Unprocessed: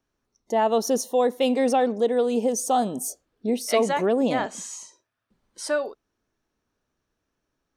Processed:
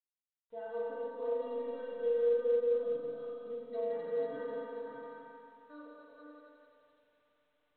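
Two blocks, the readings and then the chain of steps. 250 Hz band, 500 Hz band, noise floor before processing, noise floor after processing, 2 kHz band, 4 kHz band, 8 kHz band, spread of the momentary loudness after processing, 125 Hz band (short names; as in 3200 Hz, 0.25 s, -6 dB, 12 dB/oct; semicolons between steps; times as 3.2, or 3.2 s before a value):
-24.0 dB, -9.5 dB, -80 dBFS, under -85 dBFS, -18.5 dB, under -25 dB, under -40 dB, 23 LU, under -20 dB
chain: reverse delay 0.332 s, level -3 dB; de-esser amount 80%; gate -39 dBFS, range -23 dB; fixed phaser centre 510 Hz, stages 8; metallic resonator 140 Hz, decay 0.53 s, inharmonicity 0.03; multi-head echo 86 ms, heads second and third, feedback 44%, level -7.5 dB; spring tank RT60 2.6 s, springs 40/46 ms, chirp 60 ms, DRR -4 dB; gain -8 dB; µ-law 64 kbps 8000 Hz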